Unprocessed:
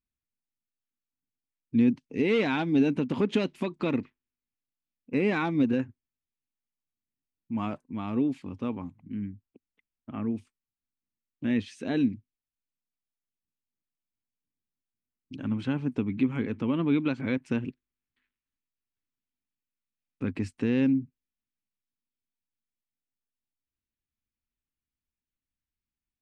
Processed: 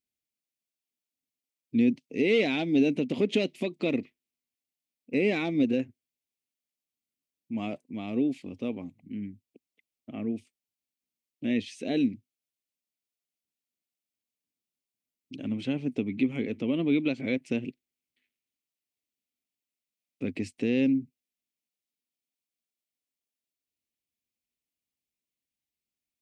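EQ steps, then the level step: high-pass 330 Hz 6 dB/octave; high-order bell 1.2 kHz -14.5 dB 1.2 oct; +3.5 dB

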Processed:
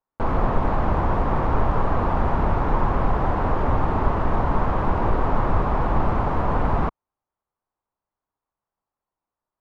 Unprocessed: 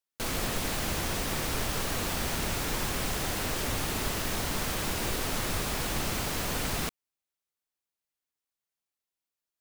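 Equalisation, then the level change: resonant low-pass 1 kHz, resonance Q 2.4; bass shelf 100 Hz +8.5 dB; +7.5 dB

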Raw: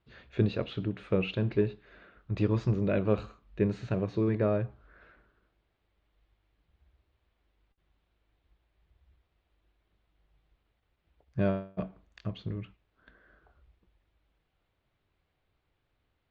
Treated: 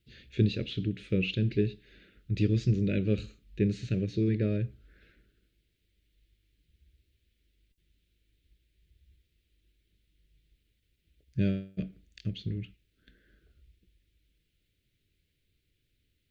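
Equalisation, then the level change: Butterworth band-stop 920 Hz, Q 0.53; bass shelf 320 Hz +2.5 dB; treble shelf 2.9 kHz +9.5 dB; 0.0 dB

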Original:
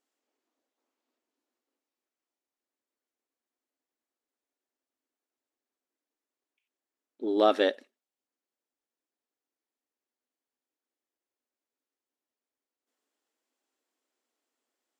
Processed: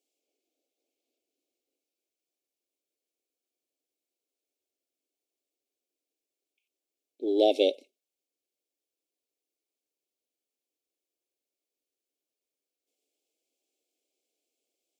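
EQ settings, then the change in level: high-pass 230 Hz; brick-wall FIR band-stop 860–2100 Hz; static phaser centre 420 Hz, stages 4; +3.0 dB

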